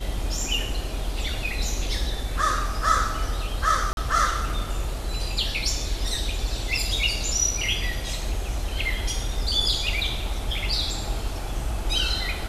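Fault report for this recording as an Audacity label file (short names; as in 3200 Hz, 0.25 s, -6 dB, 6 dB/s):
3.930000	3.970000	gap 41 ms
6.770000	6.770000	gap 3.4 ms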